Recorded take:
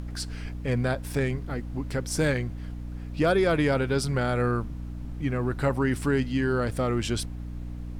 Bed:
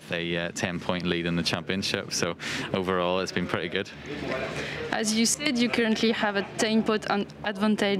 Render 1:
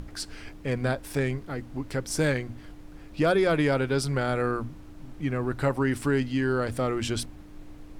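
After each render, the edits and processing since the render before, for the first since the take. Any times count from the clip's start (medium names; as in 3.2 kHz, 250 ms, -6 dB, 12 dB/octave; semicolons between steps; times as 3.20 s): hum notches 60/120/180/240 Hz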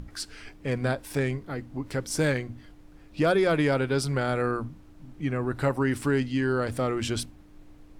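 noise print and reduce 6 dB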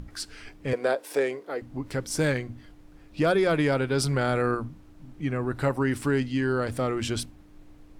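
0.73–1.62 s: resonant high-pass 460 Hz, resonance Q 2.3; 3.95–4.55 s: level flattener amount 50%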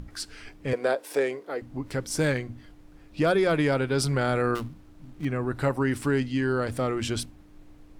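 4.55–5.25 s: dead-time distortion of 0.19 ms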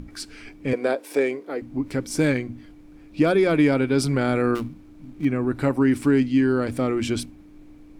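small resonant body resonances 270/2300 Hz, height 9 dB, ringing for 20 ms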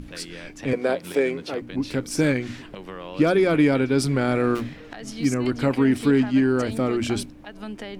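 add bed -11.5 dB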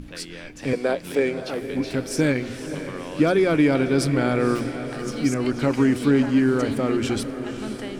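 echo that smears into a reverb 529 ms, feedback 58%, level -10.5 dB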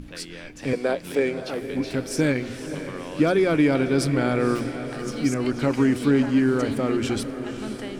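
trim -1 dB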